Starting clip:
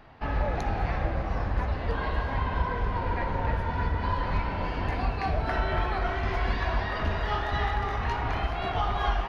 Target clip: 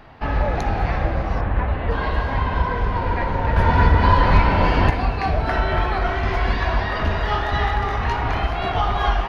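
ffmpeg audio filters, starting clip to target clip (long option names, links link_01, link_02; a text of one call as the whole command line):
ffmpeg -i in.wav -filter_complex "[0:a]asplit=3[link_01][link_02][link_03];[link_01]afade=type=out:start_time=1.4:duration=0.02[link_04];[link_02]lowpass=frequency=3300:width=0.5412,lowpass=frequency=3300:width=1.3066,afade=type=in:start_time=1.4:duration=0.02,afade=type=out:start_time=1.9:duration=0.02[link_05];[link_03]afade=type=in:start_time=1.9:duration=0.02[link_06];[link_04][link_05][link_06]amix=inputs=3:normalize=0,asettb=1/sr,asplit=3[link_07][link_08][link_09];[link_07]atrim=end=3.564[link_10];[link_08]atrim=start=3.56:end=4.9,asetpts=PTS-STARTPTS,afade=type=in:duration=0.004:curve=qsin,afade=type=out:start_time=1.336:duration=0.004:curve=qsin,acontrast=65[link_11];[link_09]atrim=start=4.896[link_12];[link_10][link_11]acrossfade=duration=0.004:curve1=hsin:curve2=qsin[link_13];[link_13][link_12]acrossfade=duration=0.004:curve1=qsin:curve2=hsin,volume=7dB" out.wav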